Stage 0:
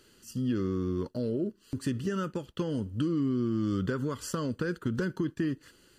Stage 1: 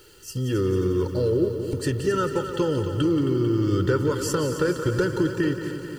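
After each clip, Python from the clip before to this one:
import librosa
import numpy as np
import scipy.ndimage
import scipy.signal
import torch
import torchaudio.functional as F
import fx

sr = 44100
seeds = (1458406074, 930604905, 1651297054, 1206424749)

y = x + 0.82 * np.pad(x, (int(2.2 * sr / 1000.0), 0))[:len(x)]
y = fx.echo_heads(y, sr, ms=89, heads='second and third', feedback_pct=66, wet_db=-10.5)
y = fx.dmg_noise_colour(y, sr, seeds[0], colour='blue', level_db=-70.0)
y = y * librosa.db_to_amplitude(6.5)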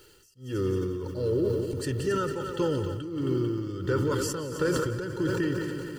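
y = x * (1.0 - 0.99 / 2.0 + 0.99 / 2.0 * np.cos(2.0 * np.pi * 1.5 * (np.arange(len(x)) / sr)))
y = fx.sustainer(y, sr, db_per_s=24.0)
y = y * librosa.db_to_amplitude(-4.0)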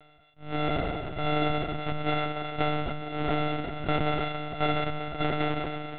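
y = np.r_[np.sort(x[:len(x) // 64 * 64].reshape(-1, 64), axis=1).ravel(), x[len(x) // 64 * 64:]]
y = fx.lpc_monotone(y, sr, seeds[1], pitch_hz=150.0, order=16)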